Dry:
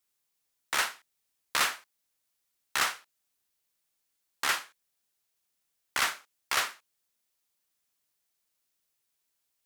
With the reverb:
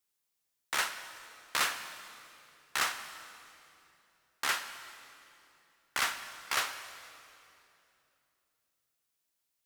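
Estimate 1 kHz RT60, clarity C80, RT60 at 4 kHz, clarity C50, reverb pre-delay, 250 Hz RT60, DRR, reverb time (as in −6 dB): 2.6 s, 10.5 dB, 2.4 s, 10.0 dB, 38 ms, 3.4 s, 9.5 dB, 2.8 s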